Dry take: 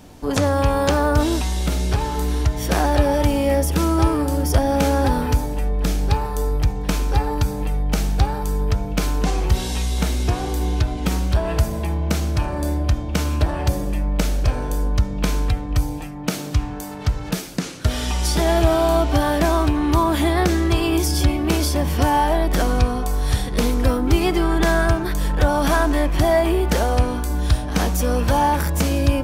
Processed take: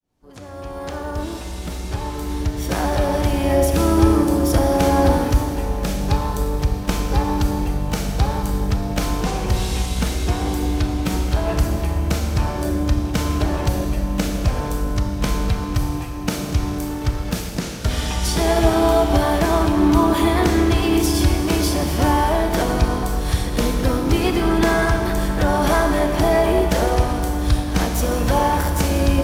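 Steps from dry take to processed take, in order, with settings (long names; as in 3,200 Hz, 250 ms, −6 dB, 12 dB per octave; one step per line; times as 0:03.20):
fade in at the beginning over 3.68 s
four-comb reverb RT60 2.7 s, combs from 27 ms, DRR 4 dB
pitch-shifted copies added −7 semitones −11 dB, +4 semitones −13 dB
level −1 dB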